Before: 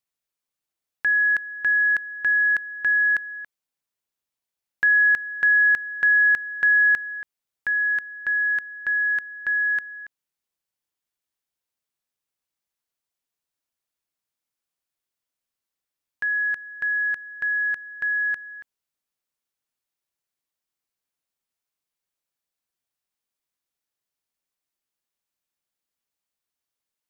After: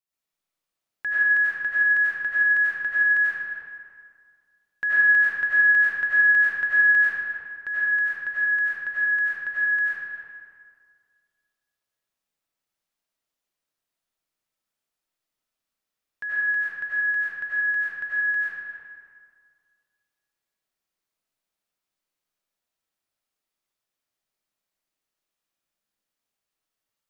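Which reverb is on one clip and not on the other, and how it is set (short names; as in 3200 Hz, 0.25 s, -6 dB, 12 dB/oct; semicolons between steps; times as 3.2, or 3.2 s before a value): digital reverb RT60 2 s, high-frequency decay 0.6×, pre-delay 55 ms, DRR -10 dB; gain -7 dB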